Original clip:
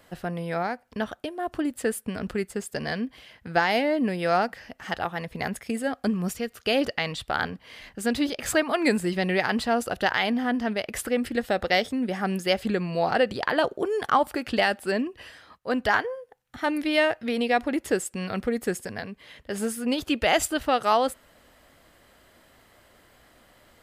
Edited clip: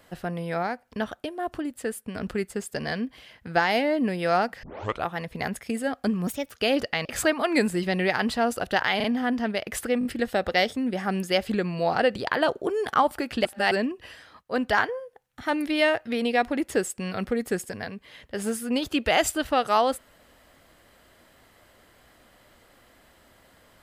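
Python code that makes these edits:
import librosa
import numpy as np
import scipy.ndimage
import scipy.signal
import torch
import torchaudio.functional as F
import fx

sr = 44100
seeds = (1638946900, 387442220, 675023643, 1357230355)

y = fx.edit(x, sr, fx.clip_gain(start_s=1.59, length_s=0.56, db=-4.0),
    fx.tape_start(start_s=4.63, length_s=0.42),
    fx.speed_span(start_s=6.27, length_s=0.29, speed=1.2),
    fx.cut(start_s=7.1, length_s=1.25),
    fx.stutter(start_s=10.26, slice_s=0.04, count=3),
    fx.stutter(start_s=11.21, slice_s=0.02, count=4),
    fx.reverse_span(start_s=14.61, length_s=0.26), tone=tone)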